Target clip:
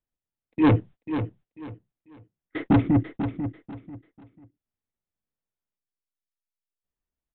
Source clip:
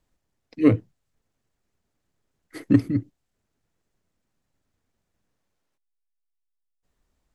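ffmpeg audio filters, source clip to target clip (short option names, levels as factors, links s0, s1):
-af "agate=range=0.0501:threshold=0.00708:ratio=16:detection=peak,aresample=8000,asoftclip=type=tanh:threshold=0.0794,aresample=44100,aecho=1:1:492|984|1476:0.335|0.0904|0.0244,volume=2.51"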